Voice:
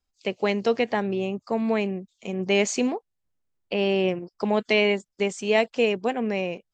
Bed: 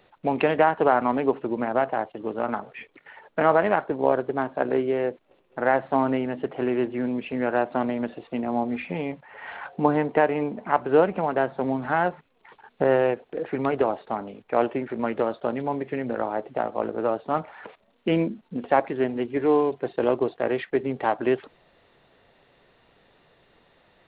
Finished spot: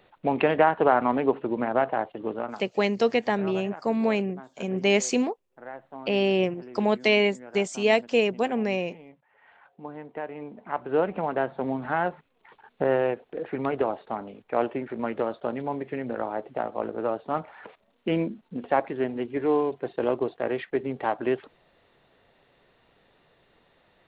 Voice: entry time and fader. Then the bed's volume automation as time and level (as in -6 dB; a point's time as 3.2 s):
2.35 s, 0.0 dB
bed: 2.33 s -0.5 dB
2.75 s -19 dB
9.84 s -19 dB
11.18 s -3 dB